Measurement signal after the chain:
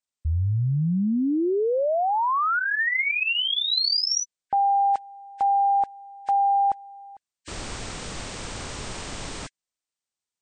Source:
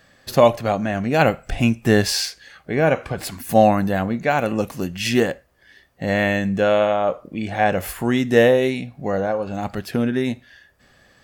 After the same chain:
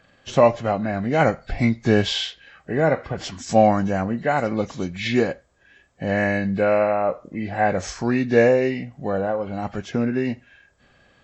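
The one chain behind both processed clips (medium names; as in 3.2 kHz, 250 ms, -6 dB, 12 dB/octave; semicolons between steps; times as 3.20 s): knee-point frequency compression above 1.5 kHz 1.5:1; trim -1.5 dB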